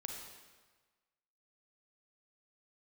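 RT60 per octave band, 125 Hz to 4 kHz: 1.4, 1.3, 1.3, 1.4, 1.3, 1.2 s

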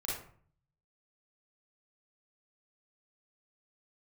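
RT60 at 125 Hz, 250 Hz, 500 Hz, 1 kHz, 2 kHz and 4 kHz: 0.95, 0.65, 0.50, 0.50, 0.45, 0.30 s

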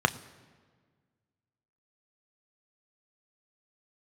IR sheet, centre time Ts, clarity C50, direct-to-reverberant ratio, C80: 5 ms, 18.0 dB, 9.5 dB, 19.0 dB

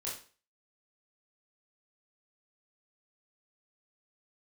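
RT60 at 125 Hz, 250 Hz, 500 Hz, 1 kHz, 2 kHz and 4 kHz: 0.35, 0.40, 0.40, 0.40, 0.40, 0.35 s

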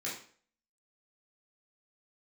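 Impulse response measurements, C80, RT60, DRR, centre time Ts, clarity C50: 9.5 dB, 0.50 s, -7.5 dB, 36 ms, 5.0 dB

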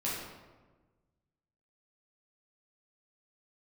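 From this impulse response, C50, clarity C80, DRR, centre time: 0.0 dB, 3.0 dB, -7.5 dB, 76 ms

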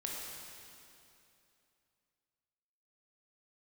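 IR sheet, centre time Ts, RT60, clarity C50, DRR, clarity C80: 0.138 s, 2.8 s, -1.0 dB, -3.0 dB, 0.5 dB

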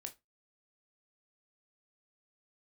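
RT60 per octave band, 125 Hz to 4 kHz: 0.30, 0.25, 0.20, 0.20, 0.20, 0.15 s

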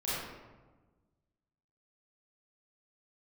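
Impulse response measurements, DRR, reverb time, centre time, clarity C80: -11.0 dB, 1.3 s, 0.101 s, 0.0 dB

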